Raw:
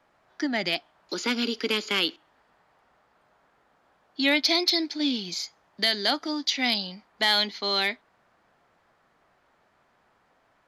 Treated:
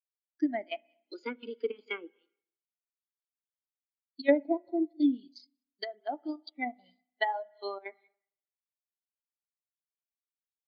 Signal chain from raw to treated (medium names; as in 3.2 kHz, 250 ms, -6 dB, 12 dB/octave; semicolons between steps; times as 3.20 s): tracing distortion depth 0.022 ms; treble shelf 7.5 kHz +3.5 dB; on a send: multi-head delay 61 ms, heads first and third, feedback 44%, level -18 dB; on the sum: square tremolo 2.8 Hz, depth 65%, duty 80%; tone controls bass -10 dB, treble +1 dB; low-pass that closes with the level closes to 950 Hz, closed at -20.5 dBFS; power-law waveshaper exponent 1.4; Chebyshev band-pass 100–9500 Hz; band-stop 1.8 kHz, Q 25; spring tank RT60 1.8 s, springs 32/56 ms, chirp 60 ms, DRR 11 dB; in parallel at -2.5 dB: compression, threshold -39 dBFS, peak gain reduction 13 dB; on the sum: spectral contrast expander 2.5:1